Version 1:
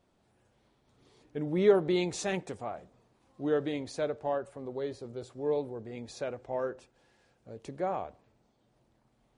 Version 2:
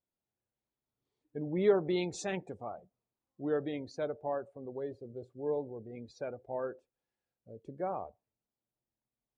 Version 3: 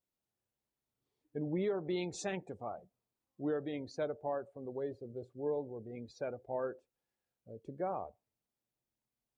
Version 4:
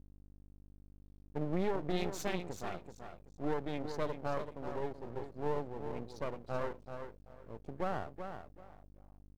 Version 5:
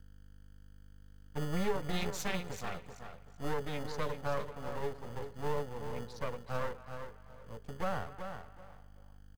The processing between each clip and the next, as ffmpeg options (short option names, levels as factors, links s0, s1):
-af "afftdn=nr=22:nf=-44,volume=0.668"
-af "alimiter=level_in=1.33:limit=0.0631:level=0:latency=1:release=387,volume=0.75"
-af "aecho=1:1:382|764|1146:0.398|0.0916|0.0211,aeval=exprs='val(0)+0.00141*(sin(2*PI*50*n/s)+sin(2*PI*2*50*n/s)/2+sin(2*PI*3*50*n/s)/3+sin(2*PI*4*50*n/s)/4+sin(2*PI*5*50*n/s)/5)':c=same,aeval=exprs='max(val(0),0)':c=same,volume=1.58"
-filter_complex "[0:a]acrossover=split=270|680|3900[s0][s1][s2][s3];[s0]acrusher=samples=28:mix=1:aa=0.000001[s4];[s1]asuperpass=centerf=490:order=20:qfactor=2.7[s5];[s2]aecho=1:1:251|502|753:0.15|0.0598|0.0239[s6];[s4][s5][s6][s3]amix=inputs=4:normalize=0,volume=1.5"